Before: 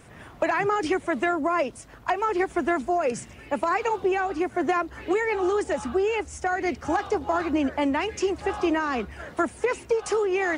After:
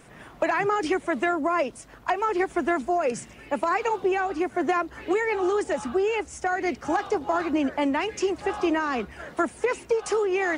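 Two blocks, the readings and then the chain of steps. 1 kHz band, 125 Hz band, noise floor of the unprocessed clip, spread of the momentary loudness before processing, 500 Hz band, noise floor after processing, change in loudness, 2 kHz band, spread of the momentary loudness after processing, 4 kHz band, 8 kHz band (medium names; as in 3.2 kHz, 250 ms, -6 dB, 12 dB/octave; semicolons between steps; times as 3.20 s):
0.0 dB, -4.0 dB, -47 dBFS, 4 LU, 0.0 dB, -48 dBFS, 0.0 dB, 0.0 dB, 5 LU, 0.0 dB, 0.0 dB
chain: peaking EQ 85 Hz -12 dB 0.57 oct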